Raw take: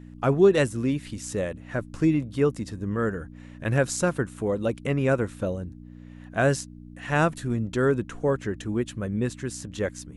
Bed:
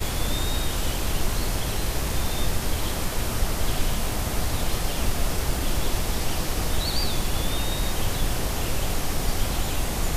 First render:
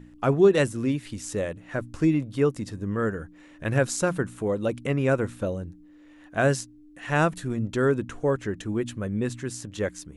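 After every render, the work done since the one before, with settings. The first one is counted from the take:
hum removal 60 Hz, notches 4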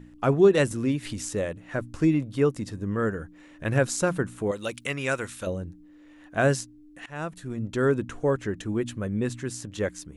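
0:00.71–0:01.29: upward compression, threshold −27 dBFS
0:04.51–0:05.47: tilt shelving filter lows −9.5 dB, about 1,200 Hz
0:07.06–0:07.91: fade in, from −20 dB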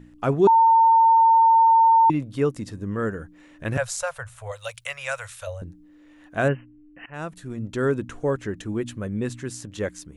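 0:00.47–0:02.10: beep over 906 Hz −12 dBFS
0:03.77–0:05.62: elliptic band-stop filter 110–570 Hz
0:06.48–0:07.14: linear-phase brick-wall low-pass 3,100 Hz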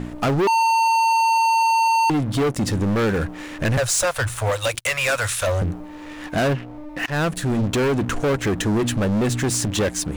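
downward compressor 2.5 to 1, threshold −29 dBFS, peak gain reduction 11 dB
leveller curve on the samples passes 5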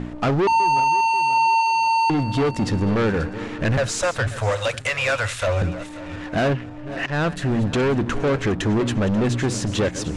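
feedback delay that plays each chunk backwards 268 ms, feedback 59%, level −13.5 dB
high-frequency loss of the air 81 metres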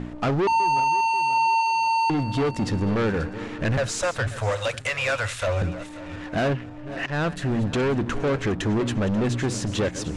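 level −3 dB

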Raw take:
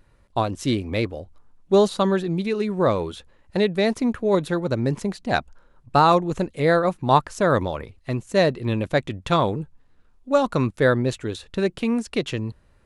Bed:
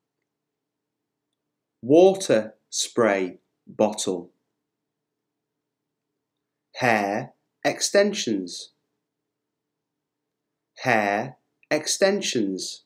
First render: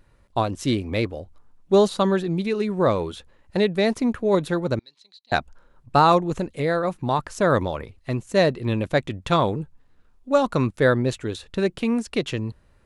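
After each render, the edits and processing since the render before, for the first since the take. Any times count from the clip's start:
0:04.79–0:05.32: resonant band-pass 4,000 Hz, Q 9.7
0:06.39–0:07.19: downward compressor 2 to 1, threshold −21 dBFS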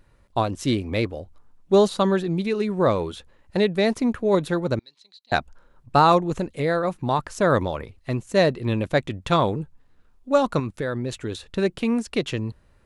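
0:10.59–0:11.44: downward compressor, threshold −23 dBFS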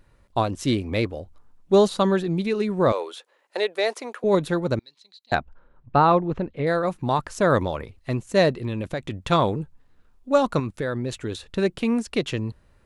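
0:02.92–0:04.24: high-pass filter 430 Hz 24 dB per octave
0:05.35–0:06.67: high-frequency loss of the air 320 metres
0:08.53–0:09.18: downward compressor 10 to 1, threshold −23 dBFS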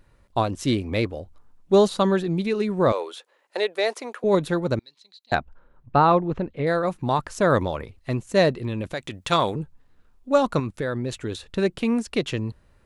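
0:08.92–0:09.55: spectral tilt +2 dB per octave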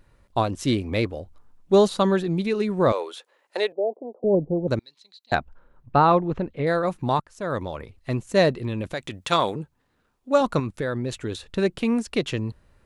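0:03.72–0:04.68: Butterworth low-pass 750 Hz 48 dB per octave
0:07.20–0:08.15: fade in, from −21.5 dB
0:09.25–0:10.41: high-pass filter 170 Hz 6 dB per octave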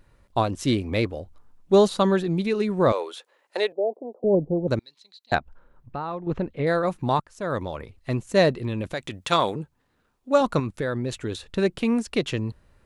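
0:05.38–0:06.27: downward compressor 2 to 1, threshold −39 dBFS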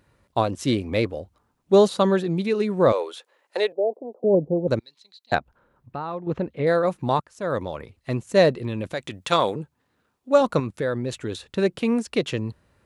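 high-pass filter 79 Hz
dynamic equaliser 510 Hz, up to +4 dB, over −34 dBFS, Q 3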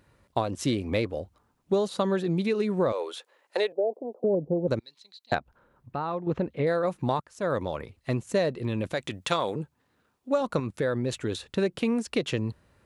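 downward compressor 6 to 1, threshold −22 dBFS, peak gain reduction 11.5 dB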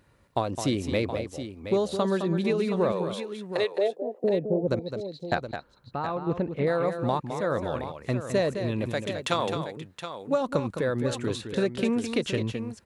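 multi-tap delay 212/721 ms −8.5/−10.5 dB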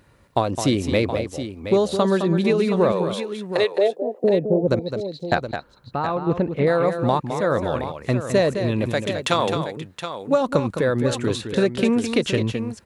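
level +6.5 dB
brickwall limiter −3 dBFS, peak gain reduction 1 dB

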